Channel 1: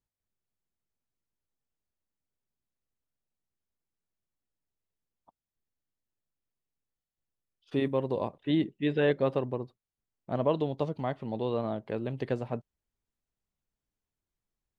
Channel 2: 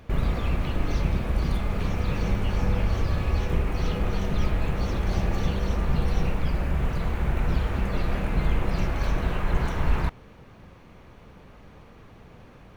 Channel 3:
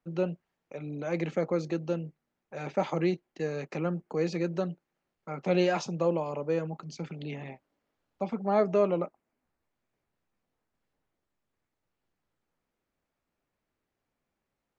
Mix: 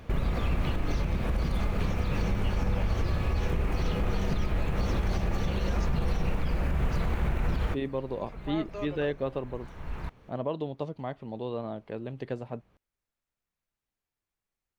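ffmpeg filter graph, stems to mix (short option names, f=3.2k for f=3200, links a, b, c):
-filter_complex "[0:a]volume=-3.5dB,asplit=2[a][b];[1:a]volume=1.5dB[c];[2:a]highpass=f=1.4k:p=1,volume=-5.5dB[d];[b]apad=whole_len=563090[e];[c][e]sidechaincompress=threshold=-54dB:ratio=4:attack=6.2:release=653[f];[a][f][d]amix=inputs=3:normalize=0,alimiter=limit=-19dB:level=0:latency=1:release=115"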